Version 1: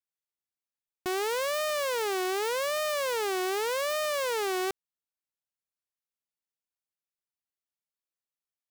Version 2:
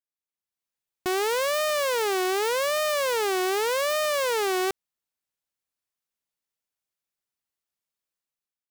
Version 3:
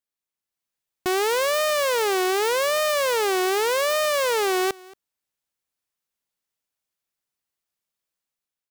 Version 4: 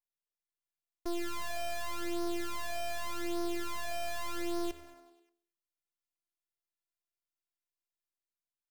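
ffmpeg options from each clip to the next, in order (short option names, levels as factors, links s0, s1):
-af "dynaudnorm=f=110:g=9:m=3.35,volume=0.501"
-af "aecho=1:1:227:0.0708,volume=1.41"
-filter_complex "[0:a]aeval=exprs='max(val(0),0)':c=same,asplit=7[s0][s1][s2][s3][s4][s5][s6];[s1]adelay=97,afreqshift=77,volume=0.126[s7];[s2]adelay=194,afreqshift=154,volume=0.0804[s8];[s3]adelay=291,afreqshift=231,volume=0.0513[s9];[s4]adelay=388,afreqshift=308,volume=0.0331[s10];[s5]adelay=485,afreqshift=385,volume=0.0211[s11];[s6]adelay=582,afreqshift=462,volume=0.0135[s12];[s0][s7][s8][s9][s10][s11][s12]amix=inputs=7:normalize=0,afftfilt=real='hypot(re,im)*cos(PI*b)':imag='0':win_size=512:overlap=0.75,volume=0.473"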